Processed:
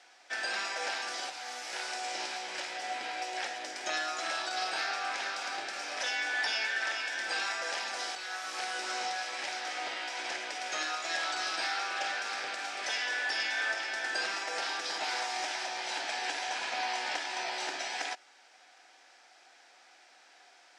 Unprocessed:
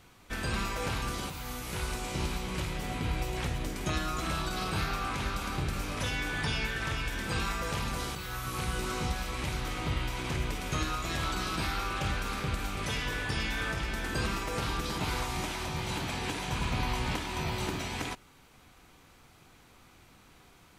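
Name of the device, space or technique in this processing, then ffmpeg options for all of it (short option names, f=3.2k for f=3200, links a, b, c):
phone speaker on a table: -af "highpass=f=430:w=0.5412,highpass=f=430:w=1.3066,equalizer=f=440:t=q:w=4:g=-8,equalizer=f=740:t=q:w=4:g=7,equalizer=f=1.1k:t=q:w=4:g=-9,equalizer=f=1.7k:t=q:w=4:g=7,equalizer=f=5.2k:t=q:w=4:g=8,lowpass=f=8.1k:w=0.5412,lowpass=f=8.1k:w=1.3066"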